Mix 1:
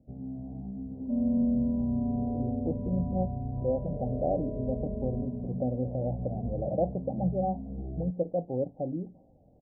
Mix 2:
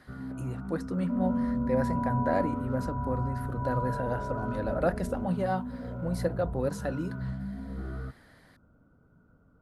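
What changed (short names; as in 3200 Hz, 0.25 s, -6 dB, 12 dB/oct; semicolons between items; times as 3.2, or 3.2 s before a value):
speech: entry -1.95 s; second sound: send -9.5 dB; master: remove Chebyshev low-pass 790 Hz, order 6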